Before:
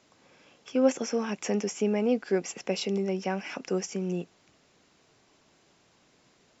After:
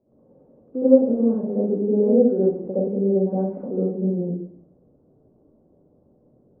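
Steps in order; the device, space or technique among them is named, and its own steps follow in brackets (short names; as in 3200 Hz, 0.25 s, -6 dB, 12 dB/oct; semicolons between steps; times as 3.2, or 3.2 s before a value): next room (LPF 570 Hz 24 dB/oct; reverb RT60 0.55 s, pre-delay 63 ms, DRR -10 dB); gain -1 dB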